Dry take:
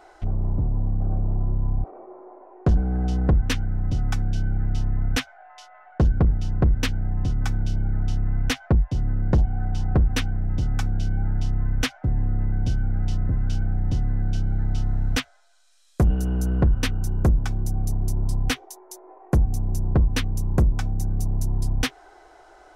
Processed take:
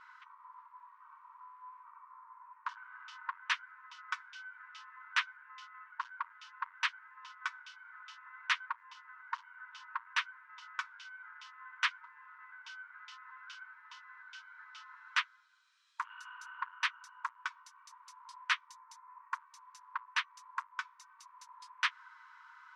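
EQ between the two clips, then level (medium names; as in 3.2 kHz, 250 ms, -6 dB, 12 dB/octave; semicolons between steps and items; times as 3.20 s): brick-wall FIR high-pass 910 Hz; low-pass 1.3 kHz 6 dB/octave; distance through air 83 m; +4.5 dB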